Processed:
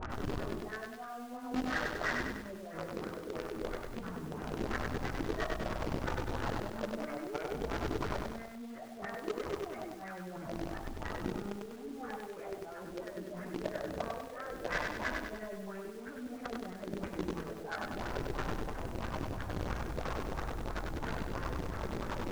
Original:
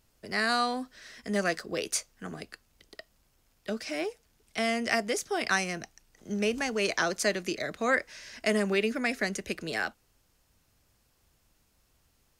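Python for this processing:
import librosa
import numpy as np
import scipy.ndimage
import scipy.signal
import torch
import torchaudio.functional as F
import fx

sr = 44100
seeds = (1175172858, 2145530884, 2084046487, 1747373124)

p1 = x + 0.5 * 10.0 ** (-25.5 / 20.0) * np.sign(x)
p2 = fx.peak_eq(p1, sr, hz=5000.0, db=-14.0, octaves=1.9)
p3 = fx.stretch_vocoder_free(p2, sr, factor=1.8)
p4 = p3 + fx.echo_single(p3, sr, ms=198, db=-6.5, dry=0)
p5 = fx.over_compress(p4, sr, threshold_db=-49.0, ratio=-1.0)
p6 = fx.filter_lfo_lowpass(p5, sr, shape='sine', hz=3.0, low_hz=280.0, high_hz=1600.0, q=2.6)
p7 = fx.quant_companded(p6, sr, bits=2)
p8 = p6 + F.gain(torch.from_numpy(p7), -11.5).numpy()
p9 = scipy.signal.sosfilt(scipy.signal.butter(4, 6500.0, 'lowpass', fs=sr, output='sos'), p8)
p10 = fx.echo_crushed(p9, sr, ms=98, feedback_pct=55, bits=10, wet_db=-3)
y = F.gain(torch.from_numpy(p10), 5.0).numpy()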